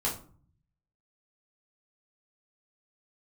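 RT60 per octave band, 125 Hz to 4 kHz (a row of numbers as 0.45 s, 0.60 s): 1.1 s, 0.75 s, 0.45 s, 0.45 s, 0.30 s, 0.25 s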